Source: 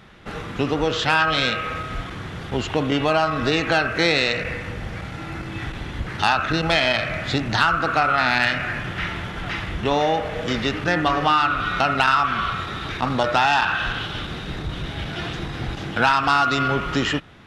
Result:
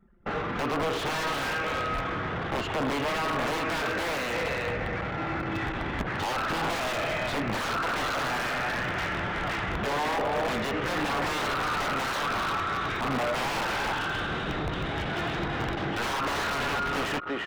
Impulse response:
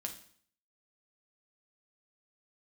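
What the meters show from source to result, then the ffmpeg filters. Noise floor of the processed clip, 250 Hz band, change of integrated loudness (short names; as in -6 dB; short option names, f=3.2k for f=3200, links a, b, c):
-32 dBFS, -6.5 dB, -7.5 dB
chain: -filter_complex "[0:a]asplit=2[a][b];[b]adelay=340,highpass=300,lowpass=3.4k,asoftclip=type=hard:threshold=-15.5dB,volume=-8dB[c];[a][c]amix=inputs=2:normalize=0,asplit=2[d][e];[e]acompressor=threshold=-27dB:ratio=10,volume=1dB[f];[d][f]amix=inputs=2:normalize=0,aeval=exprs='(mod(5.01*val(0)+1,2)-1)/5.01':c=same,anlmdn=39.8,asplit=2[g][h];[h]highpass=f=720:p=1,volume=16dB,asoftclip=type=tanh:threshold=-13.5dB[i];[g][i]amix=inputs=2:normalize=0,lowpass=f=1k:p=1,volume=-6dB,volume=-5.5dB"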